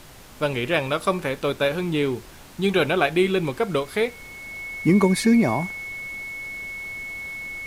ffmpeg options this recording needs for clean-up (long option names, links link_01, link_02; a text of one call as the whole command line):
ffmpeg -i in.wav -af "adeclick=threshold=4,bandreject=frequency=2200:width=30,afftdn=noise_reduction=23:noise_floor=-43" out.wav